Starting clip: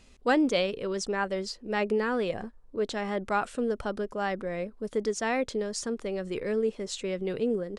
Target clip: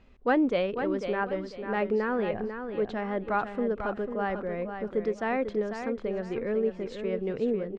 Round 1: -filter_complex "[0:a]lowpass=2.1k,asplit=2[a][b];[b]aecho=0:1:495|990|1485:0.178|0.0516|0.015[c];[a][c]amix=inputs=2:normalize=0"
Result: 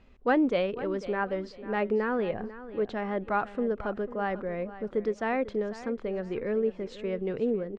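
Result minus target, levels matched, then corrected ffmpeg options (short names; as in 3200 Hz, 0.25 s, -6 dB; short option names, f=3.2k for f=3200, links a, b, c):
echo-to-direct -7 dB
-filter_complex "[0:a]lowpass=2.1k,asplit=2[a][b];[b]aecho=0:1:495|990|1485:0.398|0.115|0.0335[c];[a][c]amix=inputs=2:normalize=0"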